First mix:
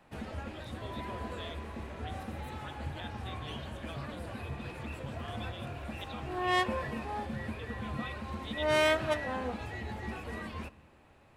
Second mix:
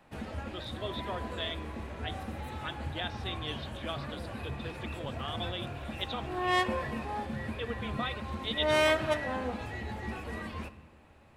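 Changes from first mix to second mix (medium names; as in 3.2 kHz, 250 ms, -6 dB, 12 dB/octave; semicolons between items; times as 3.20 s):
speech +10.0 dB; background: send +7.0 dB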